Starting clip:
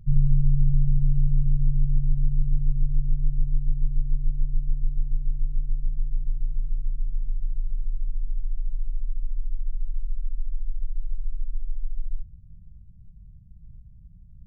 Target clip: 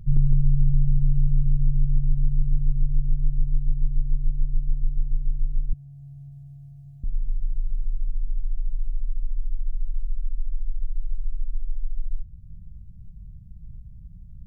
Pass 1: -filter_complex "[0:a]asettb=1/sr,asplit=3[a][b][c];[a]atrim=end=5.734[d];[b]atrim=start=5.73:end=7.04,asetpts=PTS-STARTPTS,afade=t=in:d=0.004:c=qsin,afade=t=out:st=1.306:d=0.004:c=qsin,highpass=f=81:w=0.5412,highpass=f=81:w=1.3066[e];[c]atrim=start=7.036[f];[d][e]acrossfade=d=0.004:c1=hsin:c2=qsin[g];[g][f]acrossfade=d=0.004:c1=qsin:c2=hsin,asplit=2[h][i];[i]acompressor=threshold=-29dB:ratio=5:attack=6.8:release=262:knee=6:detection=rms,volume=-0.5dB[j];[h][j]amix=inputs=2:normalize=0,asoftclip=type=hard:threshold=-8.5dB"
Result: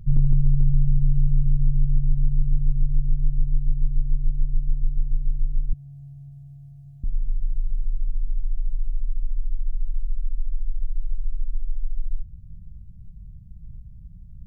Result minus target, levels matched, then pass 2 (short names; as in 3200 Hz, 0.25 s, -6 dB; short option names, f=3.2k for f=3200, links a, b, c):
compressor: peak gain reduction -7 dB
-filter_complex "[0:a]asettb=1/sr,asplit=3[a][b][c];[a]atrim=end=5.734[d];[b]atrim=start=5.73:end=7.04,asetpts=PTS-STARTPTS,afade=t=in:d=0.004:c=qsin,afade=t=out:st=1.306:d=0.004:c=qsin,highpass=f=81:w=0.5412,highpass=f=81:w=1.3066[e];[c]atrim=start=7.036[f];[d][e]acrossfade=d=0.004:c1=hsin:c2=qsin[g];[g][f]acrossfade=d=0.004:c1=qsin:c2=hsin,asplit=2[h][i];[i]acompressor=threshold=-38dB:ratio=5:attack=6.8:release=262:knee=6:detection=rms,volume=-0.5dB[j];[h][j]amix=inputs=2:normalize=0,asoftclip=type=hard:threshold=-8.5dB"